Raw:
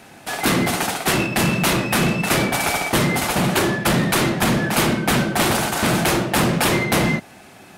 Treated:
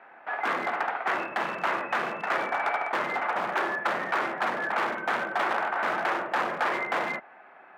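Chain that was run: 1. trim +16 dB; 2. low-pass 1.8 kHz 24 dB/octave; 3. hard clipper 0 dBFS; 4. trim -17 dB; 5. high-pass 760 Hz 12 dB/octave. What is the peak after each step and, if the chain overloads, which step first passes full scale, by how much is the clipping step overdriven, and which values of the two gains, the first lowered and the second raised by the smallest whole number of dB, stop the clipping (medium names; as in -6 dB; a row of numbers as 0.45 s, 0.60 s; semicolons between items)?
+12.5 dBFS, +9.0 dBFS, 0.0 dBFS, -17.0 dBFS, -14.5 dBFS; step 1, 9.0 dB; step 1 +7 dB, step 4 -8 dB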